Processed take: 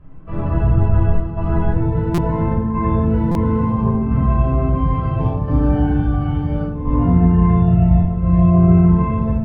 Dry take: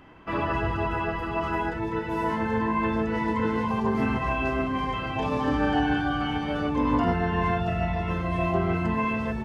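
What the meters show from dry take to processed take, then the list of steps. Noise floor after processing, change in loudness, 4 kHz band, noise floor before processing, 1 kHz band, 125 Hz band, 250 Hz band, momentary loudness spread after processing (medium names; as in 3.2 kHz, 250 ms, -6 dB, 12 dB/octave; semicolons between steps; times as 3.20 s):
-24 dBFS, +9.5 dB, no reading, -32 dBFS, +1.0 dB, +16.5 dB, +9.5 dB, 8 LU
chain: square tremolo 0.73 Hz, depth 60%, duty 85%; tilt EQ -4.5 dB/octave; level rider gain up to 6 dB; simulated room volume 970 m³, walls furnished, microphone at 5.7 m; buffer glitch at 2.14/3.31 s, samples 256, times 6; trim -11.5 dB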